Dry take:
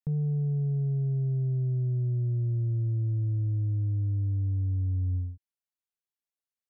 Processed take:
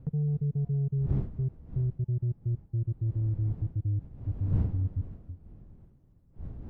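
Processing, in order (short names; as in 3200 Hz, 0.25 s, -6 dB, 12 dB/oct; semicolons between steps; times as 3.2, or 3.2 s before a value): random spectral dropouts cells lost 52%; wind noise 110 Hz -39 dBFS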